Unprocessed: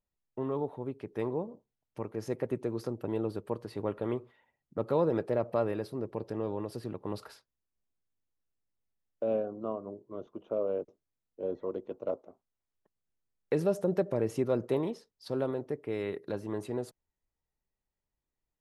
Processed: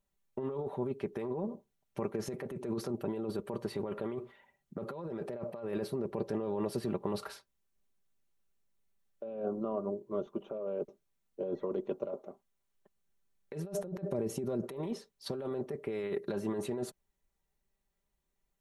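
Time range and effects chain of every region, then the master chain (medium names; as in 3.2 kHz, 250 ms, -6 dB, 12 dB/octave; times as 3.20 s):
14.08–14.63 s: peaking EQ 1.7 kHz -9 dB 2.4 oct + compression 2.5:1, threshold -32 dBFS
whole clip: band-stop 4.9 kHz, Q 12; comb 5.1 ms, depth 54%; compressor with a negative ratio -36 dBFS, ratio -1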